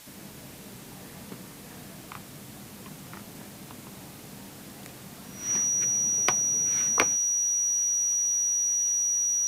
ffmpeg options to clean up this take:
-af "bandreject=f=5.8k:w=30,afwtdn=0.004"

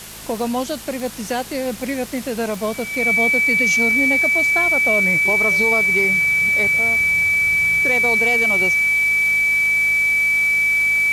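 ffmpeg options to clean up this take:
-af "adeclick=t=4,bandreject=f=53:t=h:w=4,bandreject=f=106:t=h:w=4,bandreject=f=159:t=h:w=4,bandreject=f=212:t=h:w=4,bandreject=f=2.3k:w=30,afwtdn=0.018"

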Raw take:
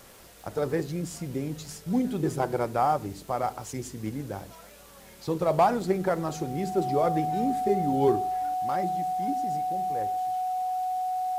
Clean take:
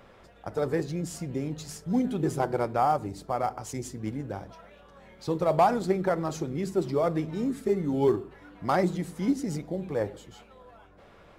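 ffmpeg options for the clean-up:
-af "adeclick=t=4,bandreject=f=740:w=30,afwtdn=0.0022,asetnsamples=n=441:p=0,asendcmd='8.54 volume volume 8.5dB',volume=0dB"

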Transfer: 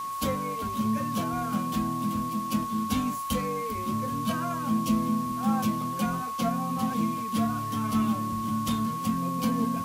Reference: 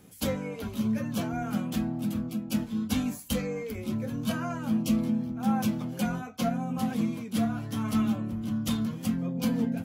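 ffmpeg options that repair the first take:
-af "bandreject=f=1.1k:w=30,afwtdn=0.0045"

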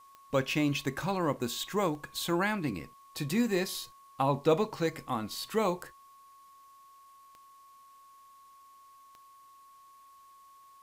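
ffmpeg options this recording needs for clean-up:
-af "adeclick=t=4,bandreject=f=1.1k:w=30,agate=range=-21dB:threshold=-49dB"

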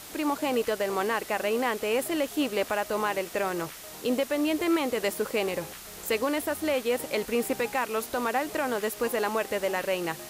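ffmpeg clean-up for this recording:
-af "afwtdn=0.0071"

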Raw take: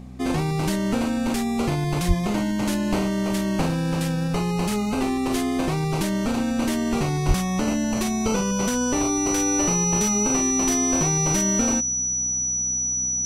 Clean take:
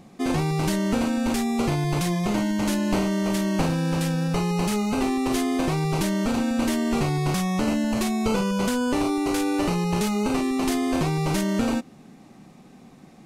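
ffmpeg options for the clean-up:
-filter_complex "[0:a]bandreject=f=63.2:t=h:w=4,bandreject=f=126.4:t=h:w=4,bandreject=f=189.6:t=h:w=4,bandreject=f=252.8:t=h:w=4,bandreject=f=5.9k:w=30,asplit=3[a][b][c];[a]afade=t=out:st=2.07:d=0.02[d];[b]highpass=f=140:w=0.5412,highpass=f=140:w=1.3066,afade=t=in:st=2.07:d=0.02,afade=t=out:st=2.19:d=0.02[e];[c]afade=t=in:st=2.19:d=0.02[f];[d][e][f]amix=inputs=3:normalize=0,asplit=3[g][h][i];[g]afade=t=out:st=7.27:d=0.02[j];[h]highpass=f=140:w=0.5412,highpass=f=140:w=1.3066,afade=t=in:st=7.27:d=0.02,afade=t=out:st=7.39:d=0.02[k];[i]afade=t=in:st=7.39:d=0.02[l];[j][k][l]amix=inputs=3:normalize=0"

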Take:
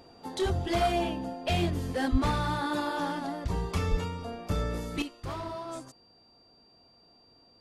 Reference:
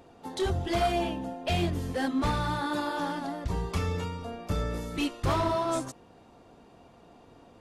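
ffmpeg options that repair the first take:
-filter_complex "[0:a]bandreject=f=4.7k:w=30,asplit=3[a][b][c];[a]afade=t=out:st=2.11:d=0.02[d];[b]highpass=f=140:w=0.5412,highpass=f=140:w=1.3066,afade=t=in:st=2.11:d=0.02,afade=t=out:st=2.23:d=0.02[e];[c]afade=t=in:st=2.23:d=0.02[f];[d][e][f]amix=inputs=3:normalize=0,asplit=3[g][h][i];[g]afade=t=out:st=3.9:d=0.02[j];[h]highpass=f=140:w=0.5412,highpass=f=140:w=1.3066,afade=t=in:st=3.9:d=0.02,afade=t=out:st=4.02:d=0.02[k];[i]afade=t=in:st=4.02:d=0.02[l];[j][k][l]amix=inputs=3:normalize=0,asetnsamples=n=441:p=0,asendcmd='5.02 volume volume 10dB',volume=0dB"

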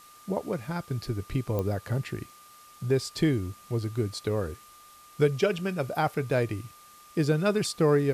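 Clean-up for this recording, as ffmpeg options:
-af "adeclick=t=4,bandreject=f=1.2k:w=30,afwtdn=0.002"

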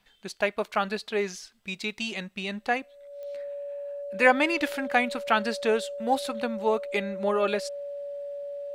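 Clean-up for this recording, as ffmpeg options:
-af "adeclick=t=4,bandreject=f=570:w=30"

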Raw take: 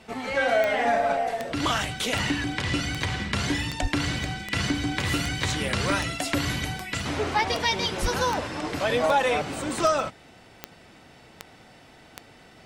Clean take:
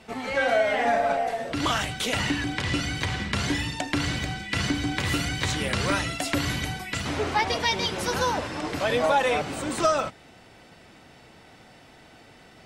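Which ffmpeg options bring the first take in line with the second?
-filter_complex "[0:a]adeclick=t=4,asplit=3[a][b][c];[a]afade=t=out:st=3.81:d=0.02[d];[b]highpass=f=140:w=0.5412,highpass=f=140:w=1.3066,afade=t=in:st=3.81:d=0.02,afade=t=out:st=3.93:d=0.02[e];[c]afade=t=in:st=3.93:d=0.02[f];[d][e][f]amix=inputs=3:normalize=0,asplit=3[g][h][i];[g]afade=t=out:st=8.01:d=0.02[j];[h]highpass=f=140:w=0.5412,highpass=f=140:w=1.3066,afade=t=in:st=8.01:d=0.02,afade=t=out:st=8.13:d=0.02[k];[i]afade=t=in:st=8.13:d=0.02[l];[j][k][l]amix=inputs=3:normalize=0"

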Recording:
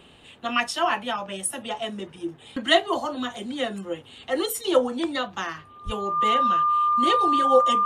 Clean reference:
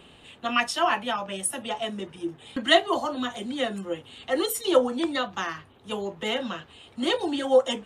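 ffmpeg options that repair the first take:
-filter_complex "[0:a]bandreject=f=1.2k:w=30,asplit=3[a][b][c];[a]afade=t=out:st=5.85:d=0.02[d];[b]highpass=f=140:w=0.5412,highpass=f=140:w=1.3066,afade=t=in:st=5.85:d=0.02,afade=t=out:st=5.97:d=0.02[e];[c]afade=t=in:st=5.97:d=0.02[f];[d][e][f]amix=inputs=3:normalize=0"

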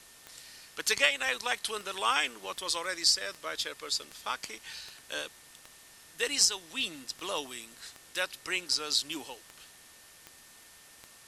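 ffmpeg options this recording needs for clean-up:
-af "adeclick=t=4,bandreject=f=1.8k:w=30,afftdn=nr=23:nf=-55"

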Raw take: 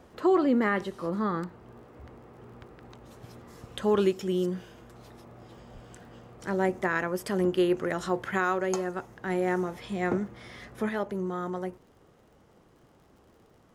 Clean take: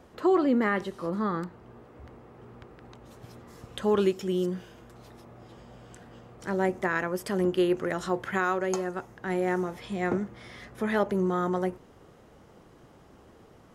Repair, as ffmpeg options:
-filter_complex "[0:a]adeclick=t=4,asplit=3[a][b][c];[a]afade=t=out:st=5.73:d=0.02[d];[b]highpass=f=140:w=0.5412,highpass=f=140:w=1.3066,afade=t=in:st=5.73:d=0.02,afade=t=out:st=5.85:d=0.02[e];[c]afade=t=in:st=5.85:d=0.02[f];[d][e][f]amix=inputs=3:normalize=0,asetnsamples=n=441:p=0,asendcmd='10.89 volume volume 5.5dB',volume=0dB"

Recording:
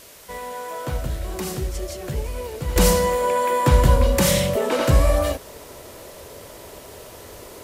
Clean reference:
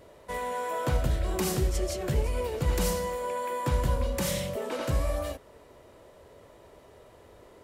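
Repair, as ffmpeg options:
-af "afwtdn=0.0056,asetnsamples=n=441:p=0,asendcmd='2.76 volume volume -11.5dB',volume=0dB"

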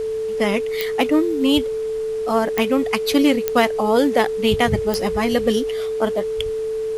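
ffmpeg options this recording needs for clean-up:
-af "adeclick=t=4,bandreject=f=440:w=30,agate=range=-21dB:threshold=-16dB"

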